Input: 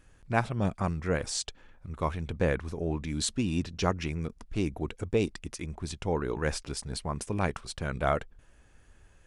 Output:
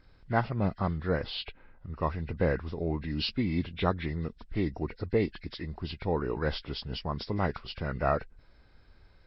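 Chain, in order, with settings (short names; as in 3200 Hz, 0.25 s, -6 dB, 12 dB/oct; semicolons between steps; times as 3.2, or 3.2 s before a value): nonlinear frequency compression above 1400 Hz 1.5:1; 1.27–2.03 LPF 3700 Hz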